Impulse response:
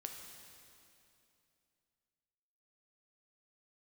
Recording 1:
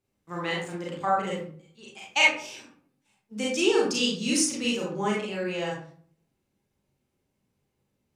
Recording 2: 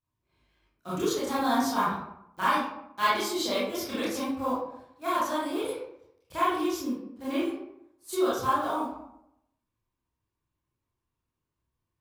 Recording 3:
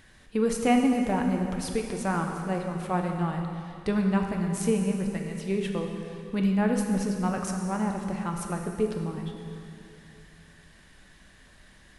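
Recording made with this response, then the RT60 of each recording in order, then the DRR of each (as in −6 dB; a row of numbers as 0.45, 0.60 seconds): 3; 0.50, 0.75, 2.7 seconds; −5.0, −10.0, 2.0 decibels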